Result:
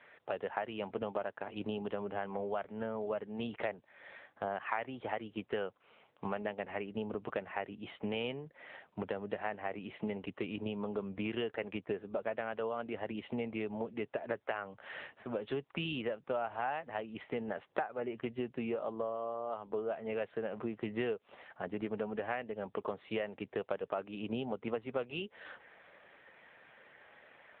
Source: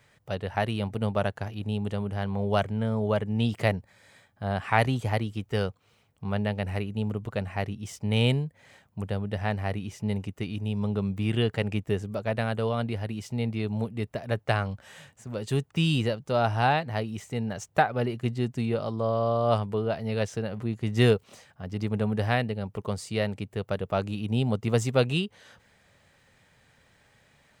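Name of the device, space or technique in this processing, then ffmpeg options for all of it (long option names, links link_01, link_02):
voicemail: -filter_complex "[0:a]asplit=3[link_01][link_02][link_03];[link_01]afade=type=out:start_time=15.6:duration=0.02[link_04];[link_02]equalizer=frequency=390:width_type=o:width=0.54:gain=-2.5,afade=type=in:start_time=15.6:duration=0.02,afade=type=out:start_time=17.21:duration=0.02[link_05];[link_03]afade=type=in:start_time=17.21:duration=0.02[link_06];[link_04][link_05][link_06]amix=inputs=3:normalize=0,highpass=360,lowpass=2700,acompressor=threshold=-41dB:ratio=6,volume=7.5dB" -ar 8000 -c:a libopencore_amrnb -b:a 7950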